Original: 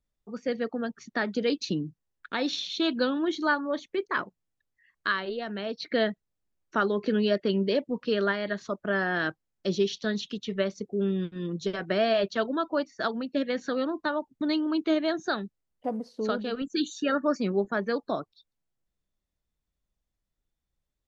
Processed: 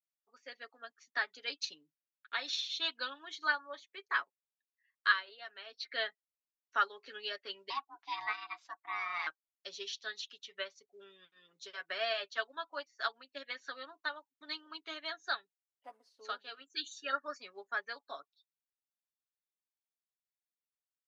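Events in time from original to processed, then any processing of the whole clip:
0:07.70–0:09.27: ring modulation 530 Hz
whole clip: high-pass filter 1,200 Hz 12 dB per octave; comb filter 7.2 ms, depth 61%; expander for the loud parts 1.5 to 1, over −51 dBFS

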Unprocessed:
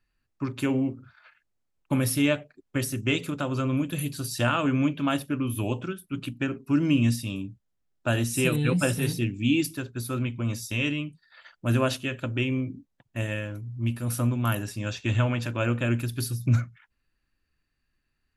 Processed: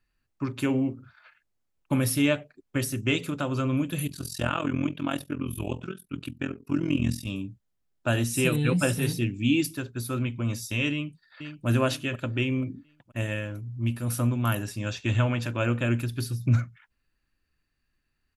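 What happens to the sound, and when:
0:04.07–0:07.27: amplitude modulation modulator 43 Hz, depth 80%
0:10.92–0:11.67: delay throw 480 ms, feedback 40%, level −8.5 dB
0:16.04–0:16.59: high-shelf EQ 7,500 Hz −9 dB

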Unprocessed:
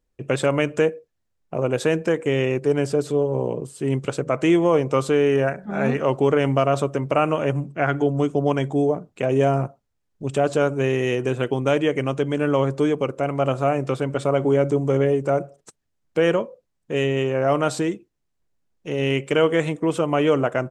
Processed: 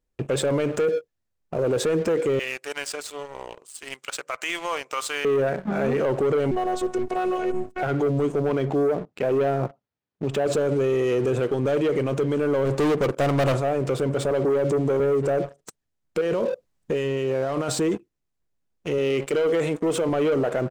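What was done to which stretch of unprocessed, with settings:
0:02.39–0:05.25: high-pass filter 1,400 Hz
0:06.51–0:07.83: phases set to zero 368 Hz
0:08.49–0:10.46: band-pass filter 120–4,200 Hz
0:12.65–0:13.58: hard clipping −25.5 dBFS
0:14.31–0:15.00: high-pass filter 130 Hz 24 dB per octave
0:16.21–0:17.69: compressor whose output falls as the input rises −28 dBFS
0:18.98–0:20.09: high-pass filter 190 Hz 6 dB per octave
whole clip: dynamic equaliser 450 Hz, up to +7 dB, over −31 dBFS, Q 1.6; leveller curve on the samples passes 2; brickwall limiter −17 dBFS

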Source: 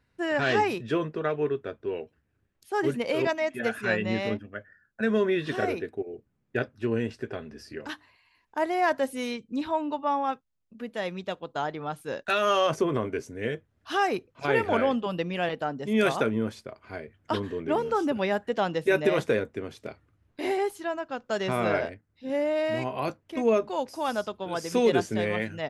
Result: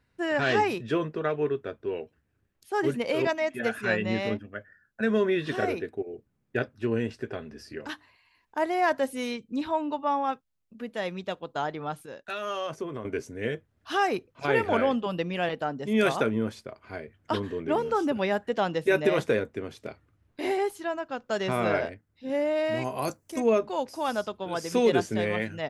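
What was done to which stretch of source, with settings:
0:12.06–0:13.05: clip gain −9 dB
0:22.84–0:23.40: high shelf with overshoot 4,800 Hz +13 dB, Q 1.5

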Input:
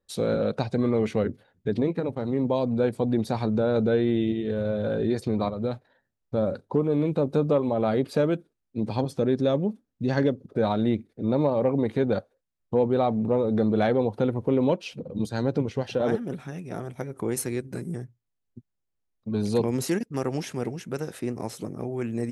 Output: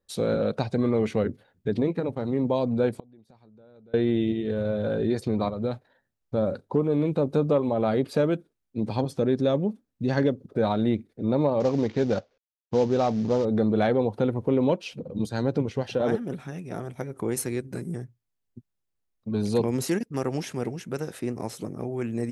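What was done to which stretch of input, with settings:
0:02.91–0:03.94: gate with flip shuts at −21 dBFS, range −30 dB
0:11.60–0:13.45: variable-slope delta modulation 32 kbit/s

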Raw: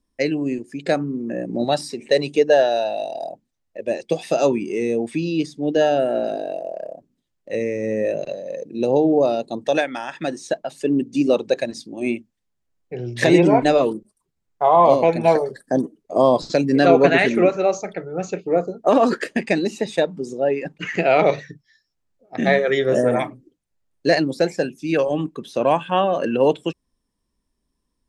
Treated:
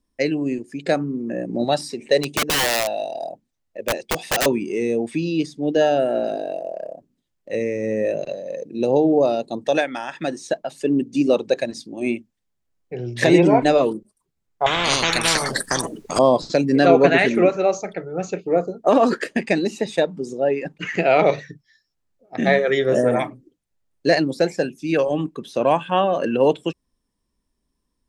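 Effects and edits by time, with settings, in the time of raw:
0:02.20–0:04.46: wrap-around overflow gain 14.5 dB
0:14.66–0:16.19: every bin compressed towards the loudest bin 10 to 1

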